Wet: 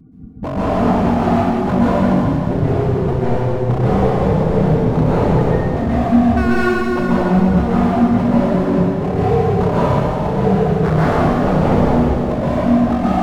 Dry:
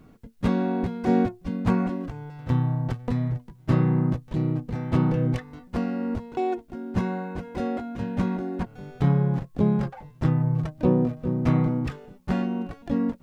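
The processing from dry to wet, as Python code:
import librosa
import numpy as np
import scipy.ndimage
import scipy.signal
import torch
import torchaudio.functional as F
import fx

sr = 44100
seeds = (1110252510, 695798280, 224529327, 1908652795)

p1 = fx.spec_expand(x, sr, power=2.2)
p2 = fx.highpass(p1, sr, hz=350.0, slope=6, at=(1.05, 1.56))
p3 = fx.rider(p2, sr, range_db=4, speed_s=0.5)
p4 = p2 + F.gain(torch.from_numpy(p3), -3.0).numpy()
p5 = fx.notch_comb(p4, sr, f0_hz=510.0)
p6 = 10.0 ** (-21.5 / 20.0) * (np.abs((p5 / 10.0 ** (-21.5 / 20.0) + 3.0) % 4.0 - 2.0) - 1.0)
p7 = fx.vibrato(p6, sr, rate_hz=3.2, depth_cents=54.0)
p8 = p7 + fx.echo_wet_highpass(p7, sr, ms=119, feedback_pct=85, hz=2800.0, wet_db=-11, dry=0)
p9 = fx.rev_plate(p8, sr, seeds[0], rt60_s=3.0, hf_ratio=0.8, predelay_ms=115, drr_db=-9.5)
y = F.gain(torch.from_numpy(p9), 3.5).numpy()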